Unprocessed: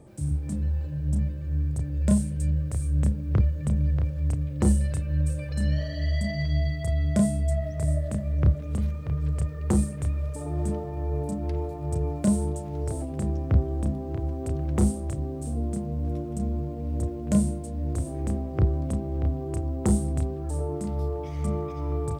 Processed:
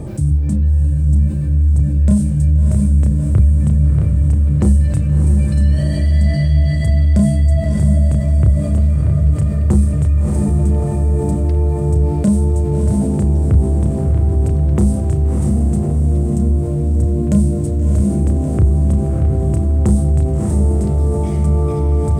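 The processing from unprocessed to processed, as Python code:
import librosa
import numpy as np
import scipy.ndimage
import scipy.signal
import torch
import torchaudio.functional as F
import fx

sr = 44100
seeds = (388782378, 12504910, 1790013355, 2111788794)

y = fx.low_shelf(x, sr, hz=250.0, db=11.0)
y = fx.echo_diffused(y, sr, ms=646, feedback_pct=47, wet_db=-5.0)
y = fx.env_flatten(y, sr, amount_pct=50)
y = y * 10.0 ** (-2.0 / 20.0)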